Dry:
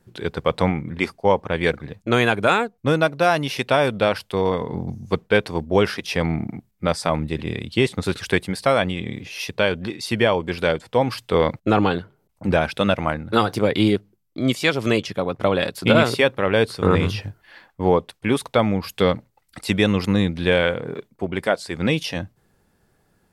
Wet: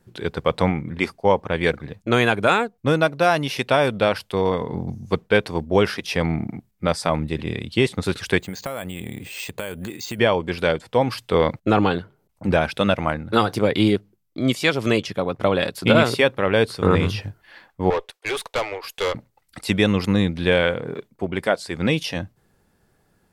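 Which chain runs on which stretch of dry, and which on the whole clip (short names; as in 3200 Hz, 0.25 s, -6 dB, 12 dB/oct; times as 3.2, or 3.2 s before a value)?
8.39–10.19 compressor 5:1, threshold -26 dBFS + careless resampling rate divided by 4×, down filtered, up hold
17.9–19.15 steep high-pass 370 Hz 48 dB/oct + dynamic EQ 2200 Hz, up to +7 dB, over -36 dBFS, Q 0.76 + tube stage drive 18 dB, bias 0.5
whole clip: dry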